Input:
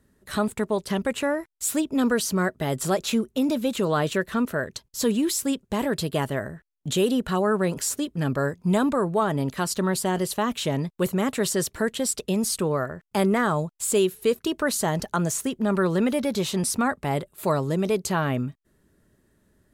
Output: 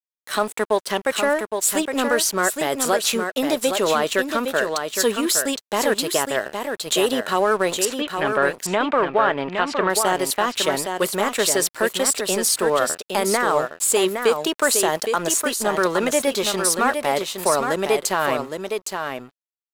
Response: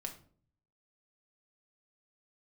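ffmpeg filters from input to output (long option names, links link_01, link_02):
-filter_complex "[0:a]highpass=460,alimiter=limit=-17dB:level=0:latency=1:release=76,aeval=exprs='sgn(val(0))*max(abs(val(0))-0.00562,0)':channel_layout=same,asettb=1/sr,asplit=3[link_01][link_02][link_03];[link_01]atrim=end=7.854[link_04];[link_02]atrim=start=7.85:end=9.9,asetpts=PTS-STARTPTS,afade=type=in:duration=0.004:curve=qsin,afade=type=out:start_time=2.046:duration=0.004:curve=qsin,lowpass=frequency=2600:width_type=q:width=1.7[link_05];[link_03]atrim=start=9.896[link_06];[link_04][link_05]acrossfade=duration=0.004:curve1=hsin:curve2=qsin[link_07];[link_07][link_06]acrossfade=duration=0.004:curve1=qsin:curve2=hsin,aecho=1:1:814:0.501,volume=9dB"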